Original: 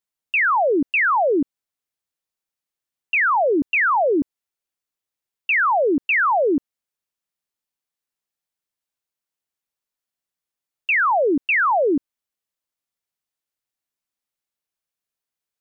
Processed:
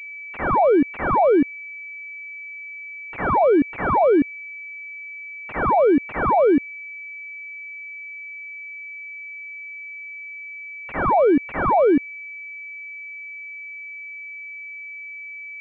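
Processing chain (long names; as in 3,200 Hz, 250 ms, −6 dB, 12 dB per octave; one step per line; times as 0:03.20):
brickwall limiter −18 dBFS, peak gain reduction 3.5 dB
switching amplifier with a slow clock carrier 2,300 Hz
level +6.5 dB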